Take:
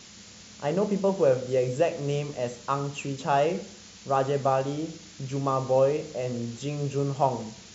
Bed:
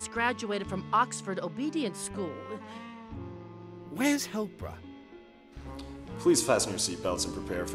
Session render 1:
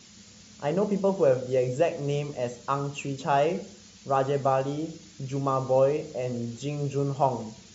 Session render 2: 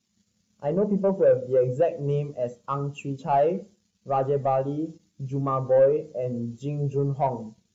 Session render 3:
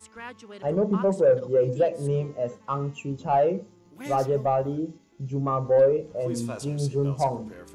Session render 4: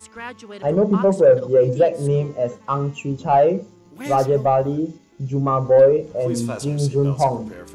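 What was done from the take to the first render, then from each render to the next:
broadband denoise 6 dB, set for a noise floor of −48 dBFS
leveller curve on the samples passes 2; every bin expanded away from the loudest bin 1.5 to 1
mix in bed −11.5 dB
level +6.5 dB

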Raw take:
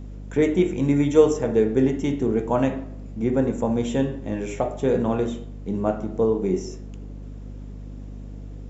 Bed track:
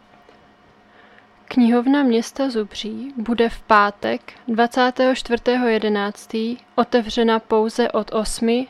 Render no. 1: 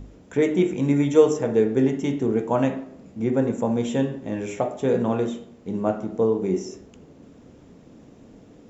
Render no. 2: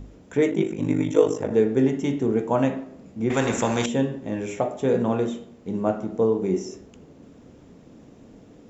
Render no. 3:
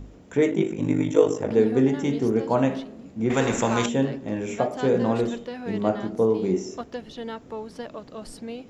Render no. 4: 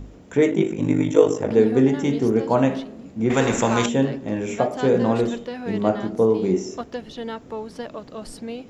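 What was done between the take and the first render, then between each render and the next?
hum removal 50 Hz, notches 8
0:00.50–0:01.52: ring modulation 25 Hz; 0:03.30–0:03.86: every bin compressed towards the loudest bin 2 to 1
mix in bed track −17.5 dB
level +3 dB

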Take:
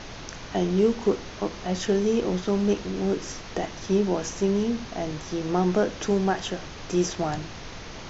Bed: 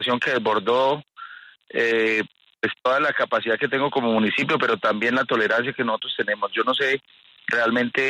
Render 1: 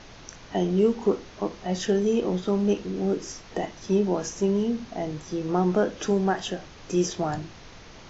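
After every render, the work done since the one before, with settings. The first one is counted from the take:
noise reduction from a noise print 7 dB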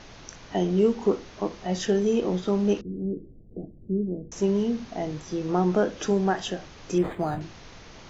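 0:02.81–0:04.32: Gaussian smoothing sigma 23 samples
0:06.98–0:07.41: linearly interpolated sample-rate reduction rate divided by 8×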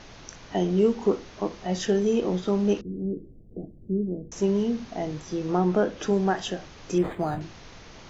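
0:05.57–0:06.13: high-shelf EQ 6,900 Hz −9 dB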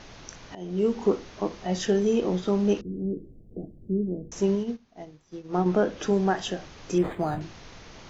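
0:00.55–0:00.99: fade in, from −22.5 dB
0:04.55–0:05.66: expander for the loud parts 2.5 to 1, over −35 dBFS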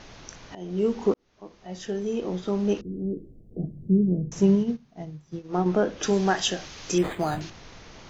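0:01.14–0:02.93: fade in
0:03.59–0:05.39: parametric band 150 Hz +14.5 dB
0:06.03–0:07.50: high-shelf EQ 2,000 Hz +11 dB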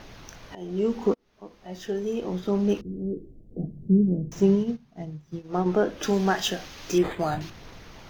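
running median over 5 samples
phase shifter 0.39 Hz, delay 4.9 ms, feedback 21%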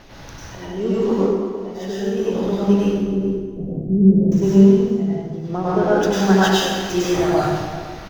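single-tap delay 423 ms −17 dB
dense smooth reverb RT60 1.5 s, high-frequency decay 0.75×, pre-delay 85 ms, DRR −8 dB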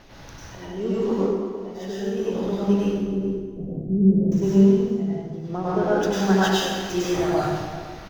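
level −4.5 dB

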